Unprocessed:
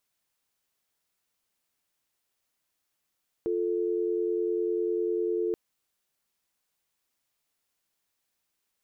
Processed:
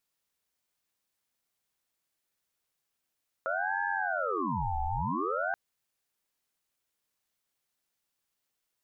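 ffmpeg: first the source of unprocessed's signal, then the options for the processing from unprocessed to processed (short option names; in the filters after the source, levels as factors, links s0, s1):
-f lavfi -i "aevalsrc='0.0398*(sin(2*PI*350*t)+sin(2*PI*440*t))':d=2.08:s=44100"
-af "aeval=exprs='val(0)*sin(2*PI*840*n/s+840*0.5/0.52*sin(2*PI*0.52*n/s))':c=same"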